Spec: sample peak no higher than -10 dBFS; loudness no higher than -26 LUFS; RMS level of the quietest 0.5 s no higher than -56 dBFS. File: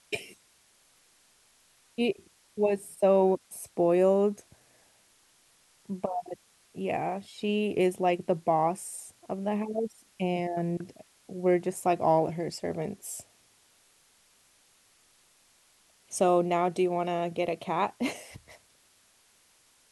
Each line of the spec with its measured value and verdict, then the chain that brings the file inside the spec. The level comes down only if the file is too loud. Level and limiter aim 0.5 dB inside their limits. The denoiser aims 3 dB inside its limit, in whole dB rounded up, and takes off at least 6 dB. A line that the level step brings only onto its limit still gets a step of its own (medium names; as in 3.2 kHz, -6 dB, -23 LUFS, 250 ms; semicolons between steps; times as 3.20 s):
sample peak -11.5 dBFS: pass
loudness -29.0 LUFS: pass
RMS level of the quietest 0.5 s -64 dBFS: pass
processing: none needed